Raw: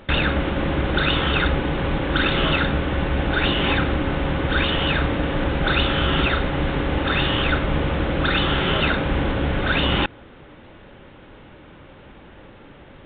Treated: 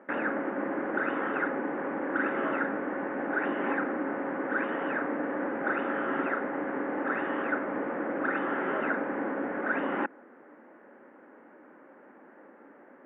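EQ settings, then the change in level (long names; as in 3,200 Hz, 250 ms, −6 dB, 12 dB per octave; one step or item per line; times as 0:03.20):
elliptic band-pass filter 240–1,800 Hz, stop band 40 dB
−6.0 dB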